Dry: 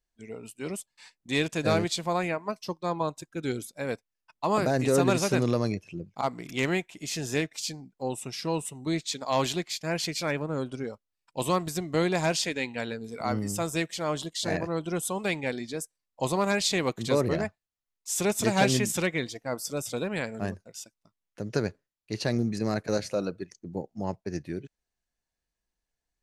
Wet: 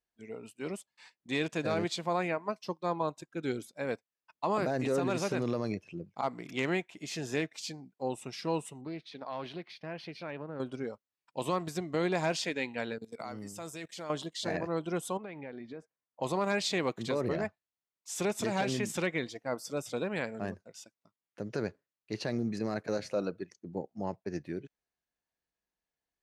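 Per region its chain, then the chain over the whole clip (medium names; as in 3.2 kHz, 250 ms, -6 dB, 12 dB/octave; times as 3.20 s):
8.81–10.60 s: compression 3:1, threshold -35 dBFS + boxcar filter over 6 samples + loudspeaker Doppler distortion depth 0.14 ms
12.98–14.10 s: treble shelf 4.1 kHz +9.5 dB + level held to a coarse grid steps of 19 dB
15.17–16.22 s: low-pass 2 kHz + compression 8:1, threshold -36 dBFS
whole clip: low-pass 3.1 kHz 6 dB/octave; peak limiter -19 dBFS; high-pass 180 Hz 6 dB/octave; trim -1.5 dB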